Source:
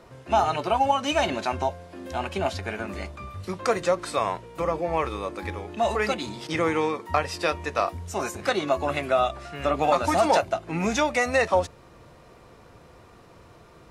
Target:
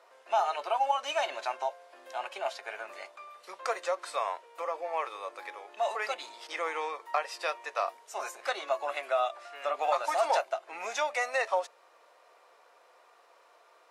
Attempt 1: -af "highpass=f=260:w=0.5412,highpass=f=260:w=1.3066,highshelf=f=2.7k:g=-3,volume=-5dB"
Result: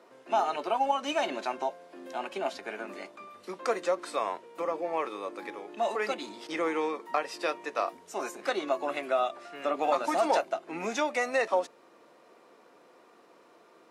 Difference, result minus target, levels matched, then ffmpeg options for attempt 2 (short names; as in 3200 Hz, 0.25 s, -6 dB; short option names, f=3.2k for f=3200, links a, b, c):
250 Hz band +17.5 dB
-af "highpass=f=560:w=0.5412,highpass=f=560:w=1.3066,highshelf=f=2.7k:g=-3,volume=-5dB"